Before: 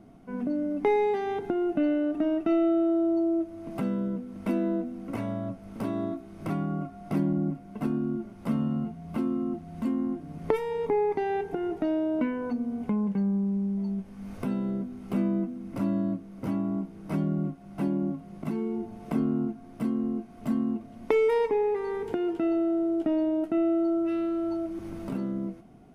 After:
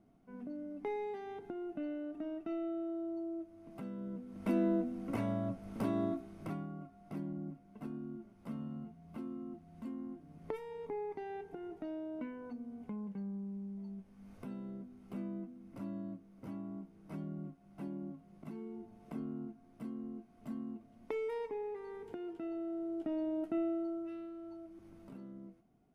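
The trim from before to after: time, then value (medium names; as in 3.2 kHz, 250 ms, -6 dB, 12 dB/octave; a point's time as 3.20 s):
3.93 s -15 dB
4.59 s -3.5 dB
6.19 s -3.5 dB
6.73 s -15 dB
22.50 s -15 dB
23.53 s -8.5 dB
24.34 s -18.5 dB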